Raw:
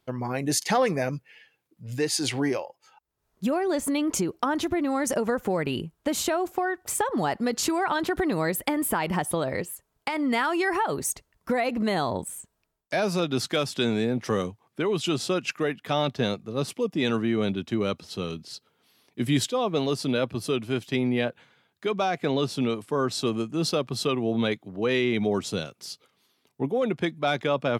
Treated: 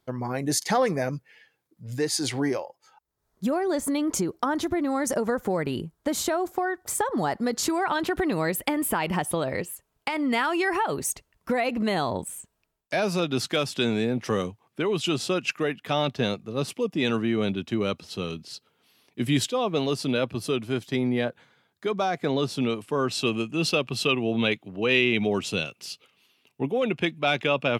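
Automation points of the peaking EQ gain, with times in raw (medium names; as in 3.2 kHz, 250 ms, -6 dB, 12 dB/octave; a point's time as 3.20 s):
peaking EQ 2.7 kHz 0.4 oct
7.58 s -6.5 dB
8.02 s +3.5 dB
20.37 s +3.5 dB
20.93 s -5 dB
22.22 s -5 dB
22.69 s +4.5 dB
23.28 s +13.5 dB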